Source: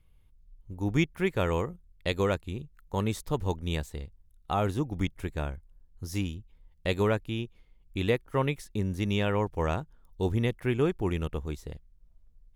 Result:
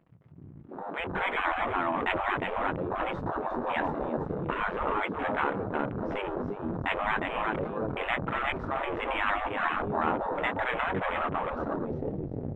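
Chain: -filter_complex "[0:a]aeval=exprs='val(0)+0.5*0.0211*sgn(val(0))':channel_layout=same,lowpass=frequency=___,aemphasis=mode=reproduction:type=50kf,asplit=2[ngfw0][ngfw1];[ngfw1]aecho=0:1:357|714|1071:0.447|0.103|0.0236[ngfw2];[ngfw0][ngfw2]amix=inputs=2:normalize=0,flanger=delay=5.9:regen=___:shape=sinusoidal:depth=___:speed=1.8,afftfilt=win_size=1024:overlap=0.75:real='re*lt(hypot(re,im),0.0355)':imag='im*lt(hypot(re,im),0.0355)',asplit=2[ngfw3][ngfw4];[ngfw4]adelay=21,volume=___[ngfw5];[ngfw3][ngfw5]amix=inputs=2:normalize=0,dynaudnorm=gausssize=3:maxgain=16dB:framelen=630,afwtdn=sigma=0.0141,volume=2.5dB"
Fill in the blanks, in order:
1.5k, -43, 1.9, -13.5dB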